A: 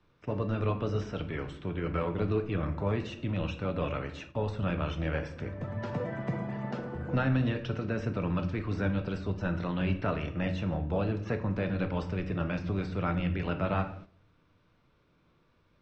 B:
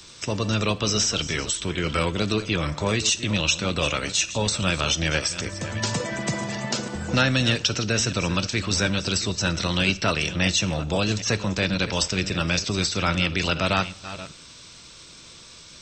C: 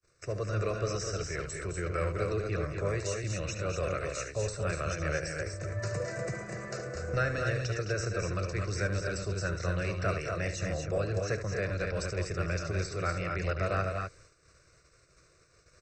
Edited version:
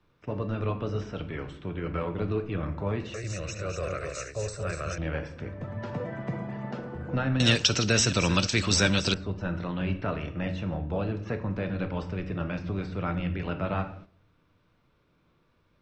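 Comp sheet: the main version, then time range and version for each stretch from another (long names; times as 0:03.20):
A
0:03.14–0:04.98: punch in from C
0:07.40–0:09.14: punch in from B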